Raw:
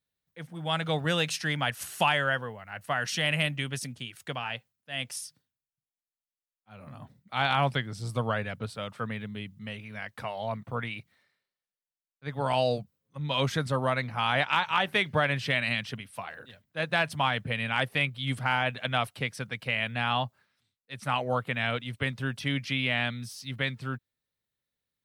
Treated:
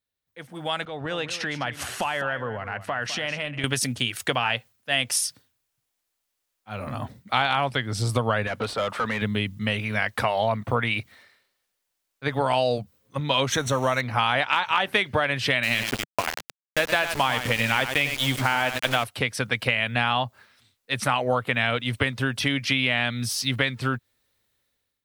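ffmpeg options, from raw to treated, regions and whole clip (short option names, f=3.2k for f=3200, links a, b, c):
-filter_complex "[0:a]asettb=1/sr,asplit=3[a][b][c];[a]atrim=end=0.854[d];[b]atrim=start=0.85:end=3.64,asetpts=PTS-STARTPTS,afade=t=in:d=0.004:c=qsin,afade=t=out:st=2.786:d=0.004:c=qsin,aemphasis=mode=reproduction:type=75fm,acompressor=threshold=-44dB:ratio=3:attack=3.2:release=140:knee=1:detection=peak,aecho=1:1:207:0.224,atrim=end_sample=123039[e];[c]atrim=start=3.636[f];[d][e]acrossfade=d=0.004:c1=hsin:c2=qsin[g];[g][f]acrossfade=d=0.004:c1=qsin:c2=hsin,asettb=1/sr,asplit=3[h][i][j];[h]atrim=end=8.474[k];[i]atrim=start=8.47:end=9.22,asetpts=PTS-STARTPTS,afade=t=in:d=0.004:c=qsin,afade=t=out:st=0.746:d=0.004:c=qsin,acrossover=split=2600|7400[l][m][n];[l]acompressor=threshold=-45dB:ratio=4[o];[m]acompressor=threshold=-54dB:ratio=4[p];[n]acompressor=threshold=-59dB:ratio=4[q];[o][p][q]amix=inputs=3:normalize=0,asplit=2[r][s];[s]highpass=f=720:p=1,volume=22dB,asoftclip=type=tanh:threshold=-28.5dB[t];[r][t]amix=inputs=2:normalize=0,lowpass=f=1.2k:p=1,volume=-6dB[u];[j]atrim=start=9.216[v];[k][u]acrossfade=d=0.004:c1=hsin:c2=qsin[w];[w][v]acrossfade=d=0.004:c1=qsin:c2=hsin,asettb=1/sr,asplit=3[x][y][z];[x]atrim=end=13.524[aa];[y]atrim=start=13.52:end=14.01,asetpts=PTS-STARTPTS,afade=t=in:d=0.004:c=qsin,afade=t=out:st=0.486:d=0.004:c=qsin,aeval=exprs='val(0)+0.5*0.00944*sgn(val(0))':c=same,asuperstop=centerf=4900:order=4:qfactor=3.5,equalizer=f=5.8k:t=o:w=0.37:g=13.5[ab];[z]atrim=start=14.006[ac];[aa][ab]acrossfade=d=0.004:c1=hsin:c2=qsin[ad];[ad][ac]acrossfade=d=0.004:c1=qsin:c2=hsin,asettb=1/sr,asplit=3[ae][af][ag];[ae]atrim=end=15.634[ah];[af]atrim=start=15.63:end=19.04,asetpts=PTS-STARTPTS,afade=t=in:d=0.004:c=qsin,afade=t=out:st=3.406:d=0.004:c=qsin,aecho=1:1:98:0.355,atrim=end_sample=150381,aeval=exprs='val(0)*gte(abs(val(0)),0.0188)':c=same[ai];[ag]atrim=start=19.036[aj];[ah][ai]acrossfade=d=0.004:c1=hsin:c2=qsin[ak];[ak][aj]acrossfade=d=0.004:c1=qsin:c2=hsin,acompressor=threshold=-35dB:ratio=6,equalizer=f=160:t=o:w=0.44:g=-11.5,dynaudnorm=f=280:g=5:m=16dB"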